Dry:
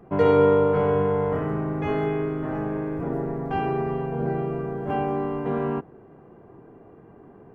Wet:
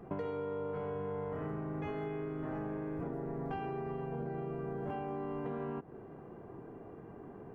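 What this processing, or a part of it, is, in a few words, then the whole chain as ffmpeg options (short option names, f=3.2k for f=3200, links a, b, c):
serial compression, peaks first: -af "acompressor=threshold=-29dB:ratio=6,acompressor=threshold=-37dB:ratio=2.5,volume=-1dB"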